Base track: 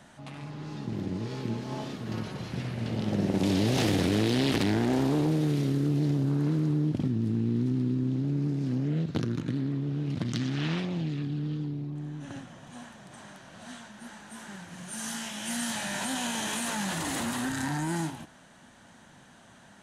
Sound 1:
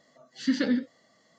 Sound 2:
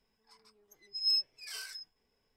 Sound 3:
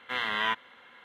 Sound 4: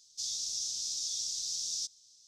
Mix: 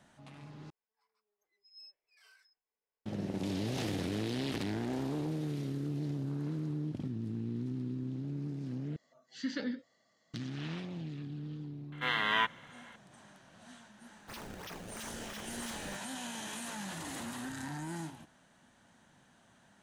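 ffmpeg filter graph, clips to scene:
-filter_complex "[0:a]volume=0.316[s0];[2:a]acrossover=split=410 2800:gain=0.158 1 0.251[s1][s2][s3];[s1][s2][s3]amix=inputs=3:normalize=0[s4];[1:a]equalizer=f=250:w=0.64:g=-3[s5];[3:a]highpass=52[s6];[4:a]acrusher=samples=25:mix=1:aa=0.000001:lfo=1:lforange=40:lforate=3[s7];[s0]asplit=3[s8][s9][s10];[s8]atrim=end=0.704[s11];[s4]atrim=end=2.36,asetpts=PTS-STARTPTS,volume=0.178[s12];[s9]atrim=start=3.056:end=8.964[s13];[s5]atrim=end=1.38,asetpts=PTS-STARTPTS,volume=0.376[s14];[s10]atrim=start=10.336[s15];[s6]atrim=end=1.04,asetpts=PTS-STARTPTS,volume=0.891,afade=t=in:d=0.004:c=hsin,afade=t=out:st=1.036:d=0.004:c=hsin,adelay=11920[s16];[s7]atrim=end=2.27,asetpts=PTS-STARTPTS,volume=0.299,afade=t=in:d=0.004:c=hsin,afade=t=out:st=2.266:d=0.004:c=hsin,adelay=14100[s17];[s11][s12]acrossfade=d=0.004:c1=hsin:c2=hsin[s18];[s18][s13]acrossfade=d=0.004:c1=hsin:c2=hsin[s19];[s19][s14]acrossfade=d=0.004:c1=hsin:c2=hsin[s20];[s20][s15]acrossfade=d=0.004:c1=hsin:c2=hsin[s21];[s21][s16][s17]amix=inputs=3:normalize=0"

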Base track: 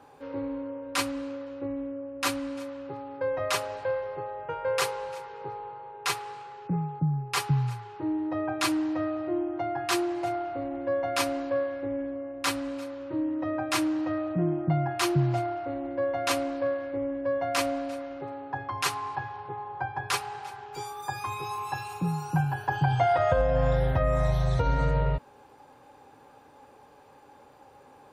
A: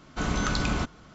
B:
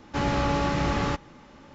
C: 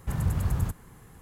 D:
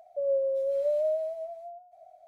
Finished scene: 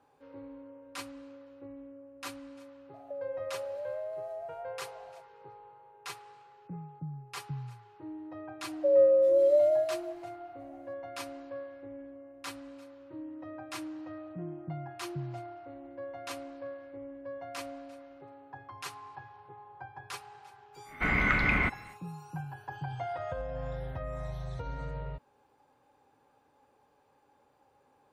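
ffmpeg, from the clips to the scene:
-filter_complex "[4:a]asplit=2[s0][s1];[0:a]volume=0.211[s2];[s0]acompressor=threshold=0.0141:ratio=6:attack=3.2:release=140:knee=1:detection=peak[s3];[s1]aecho=1:1:3.7:1[s4];[1:a]lowpass=f=2100:t=q:w=13[s5];[s3]atrim=end=2.27,asetpts=PTS-STARTPTS,volume=0.944,afade=t=in:d=0.004:c=hsin,afade=t=out:st=2.266:d=0.004:c=hsin,adelay=2940[s6];[s4]atrim=end=2.27,asetpts=PTS-STARTPTS,volume=0.944,afade=t=in:d=0.004:c=hsin,afade=t=out:st=2.266:d=0.004:c=hsin,adelay=8670[s7];[s5]atrim=end=1.14,asetpts=PTS-STARTPTS,volume=0.668,afade=t=in:d=0.1,afade=t=out:st=1.04:d=0.1,adelay=919044S[s8];[s2][s6][s7][s8]amix=inputs=4:normalize=0"

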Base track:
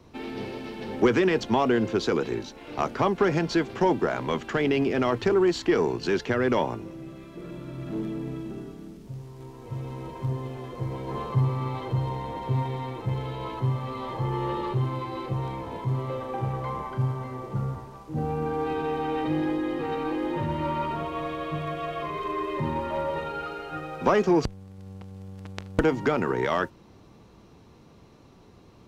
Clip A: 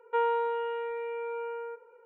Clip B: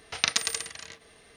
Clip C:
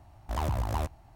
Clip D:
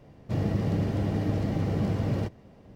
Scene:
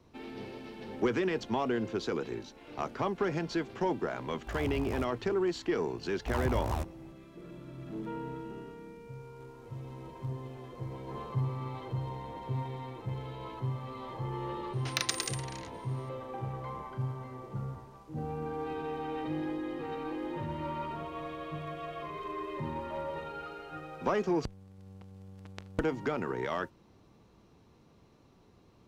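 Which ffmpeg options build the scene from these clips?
-filter_complex "[3:a]asplit=2[s0][s1];[0:a]volume=0.376[s2];[2:a]asoftclip=type=hard:threshold=0.316[s3];[s0]atrim=end=1.15,asetpts=PTS-STARTPTS,volume=0.398,afade=t=in:d=0.004:c=hsin,afade=t=out:st=1.146:d=0.004:c=hsin,adelay=4180[s4];[s1]atrim=end=1.15,asetpts=PTS-STARTPTS,volume=0.708,afade=t=in:d=0.004:c=hsin,afade=t=out:st=1.146:d=0.004:c=hsin,adelay=5970[s5];[1:a]atrim=end=2.05,asetpts=PTS-STARTPTS,volume=0.158,afade=t=in:d=0.004:c=hsin,afade=t=out:st=2.046:d=0.004:c=hsin,adelay=7930[s6];[s3]atrim=end=1.36,asetpts=PTS-STARTPTS,volume=0.531,afade=t=in:d=0.004:c=hsin,afade=t=out:st=1.356:d=0.004:c=hsin,adelay=14730[s7];[s2][s4][s5][s6][s7]amix=inputs=5:normalize=0"

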